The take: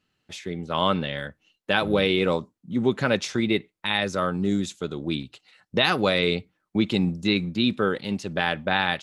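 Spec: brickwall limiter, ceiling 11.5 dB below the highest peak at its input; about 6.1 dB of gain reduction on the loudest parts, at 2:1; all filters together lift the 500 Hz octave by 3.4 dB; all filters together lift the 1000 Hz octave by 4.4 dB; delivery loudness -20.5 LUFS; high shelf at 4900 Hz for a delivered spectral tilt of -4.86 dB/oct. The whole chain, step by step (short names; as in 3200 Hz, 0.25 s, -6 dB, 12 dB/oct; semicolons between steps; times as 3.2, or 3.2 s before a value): bell 500 Hz +3 dB; bell 1000 Hz +4.5 dB; high shelf 4900 Hz +5.5 dB; compressor 2:1, threshold -25 dBFS; gain +11.5 dB; limiter -8.5 dBFS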